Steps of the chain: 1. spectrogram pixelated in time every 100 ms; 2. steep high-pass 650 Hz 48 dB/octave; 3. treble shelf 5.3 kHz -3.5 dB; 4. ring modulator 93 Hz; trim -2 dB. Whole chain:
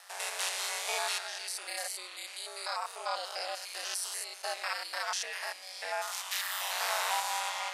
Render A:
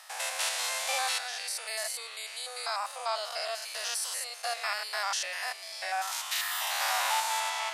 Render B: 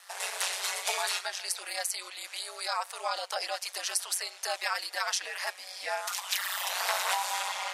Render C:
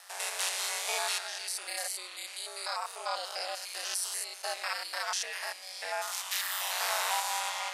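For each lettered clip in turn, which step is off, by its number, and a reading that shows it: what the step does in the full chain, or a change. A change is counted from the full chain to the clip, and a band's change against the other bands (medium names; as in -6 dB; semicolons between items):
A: 4, crest factor change -2.0 dB; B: 1, crest factor change +1.5 dB; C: 3, 8 kHz band +2.0 dB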